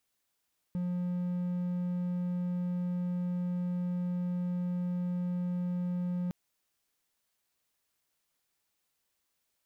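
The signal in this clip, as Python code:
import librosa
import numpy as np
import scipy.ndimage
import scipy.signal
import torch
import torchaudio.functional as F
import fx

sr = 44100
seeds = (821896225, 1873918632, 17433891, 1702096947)

y = 10.0 ** (-28.0 / 20.0) * (1.0 - 4.0 * np.abs(np.mod(178.0 * (np.arange(round(5.56 * sr)) / sr) + 0.25, 1.0) - 0.5))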